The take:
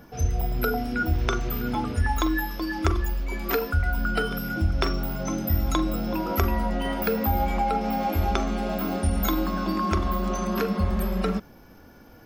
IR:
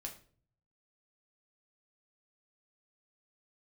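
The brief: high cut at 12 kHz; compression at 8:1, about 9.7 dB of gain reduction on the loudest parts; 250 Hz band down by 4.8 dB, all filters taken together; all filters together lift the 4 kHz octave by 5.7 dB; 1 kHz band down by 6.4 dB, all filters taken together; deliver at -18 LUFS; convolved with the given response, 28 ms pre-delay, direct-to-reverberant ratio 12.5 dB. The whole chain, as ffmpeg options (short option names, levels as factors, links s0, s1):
-filter_complex "[0:a]lowpass=12000,equalizer=f=250:t=o:g=-6,equalizer=f=1000:t=o:g=-9,equalizer=f=4000:t=o:g=8,acompressor=threshold=0.0398:ratio=8,asplit=2[s0][s1];[1:a]atrim=start_sample=2205,adelay=28[s2];[s1][s2]afir=irnorm=-1:irlink=0,volume=0.335[s3];[s0][s3]amix=inputs=2:normalize=0,volume=5.62"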